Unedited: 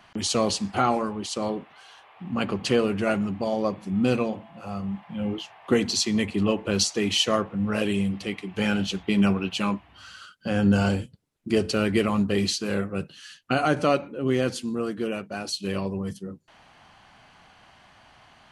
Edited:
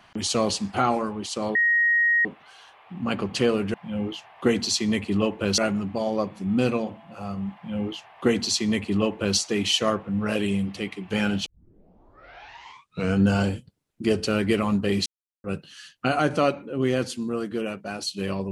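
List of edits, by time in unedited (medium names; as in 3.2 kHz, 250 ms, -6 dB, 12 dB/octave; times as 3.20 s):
1.55 s: add tone 1.88 kHz -17 dBFS 0.70 s
5.00–6.84 s: copy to 3.04 s
8.92 s: tape start 1.79 s
12.52–12.90 s: mute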